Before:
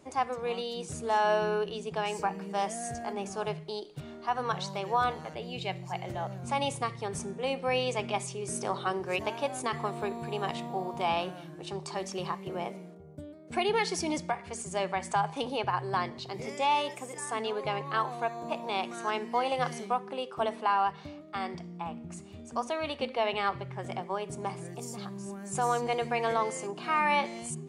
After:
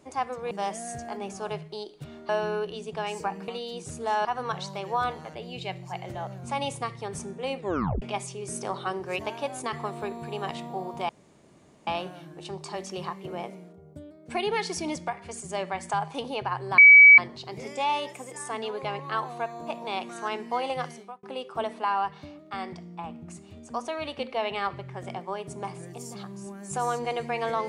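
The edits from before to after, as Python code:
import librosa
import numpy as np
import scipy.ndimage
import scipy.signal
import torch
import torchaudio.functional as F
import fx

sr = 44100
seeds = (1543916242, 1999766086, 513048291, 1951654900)

y = fx.edit(x, sr, fx.swap(start_s=0.51, length_s=0.77, other_s=2.47, other_length_s=1.78),
    fx.tape_stop(start_s=7.57, length_s=0.45),
    fx.insert_room_tone(at_s=11.09, length_s=0.78),
    fx.insert_tone(at_s=16.0, length_s=0.4, hz=2280.0, db=-8.0),
    fx.fade_out_span(start_s=19.53, length_s=0.52), tone=tone)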